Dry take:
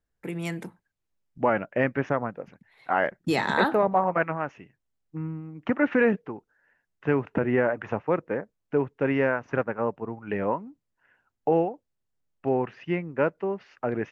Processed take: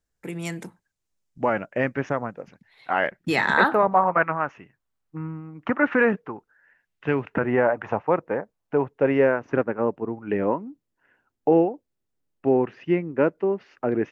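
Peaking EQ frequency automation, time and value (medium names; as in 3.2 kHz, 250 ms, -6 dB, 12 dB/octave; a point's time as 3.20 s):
peaking EQ +7.5 dB 1.2 oct
2.32 s 6.9 kHz
3.74 s 1.2 kHz
6.35 s 1.2 kHz
7.19 s 3.8 kHz
7.50 s 830 Hz
8.77 s 830 Hz
9.49 s 320 Hz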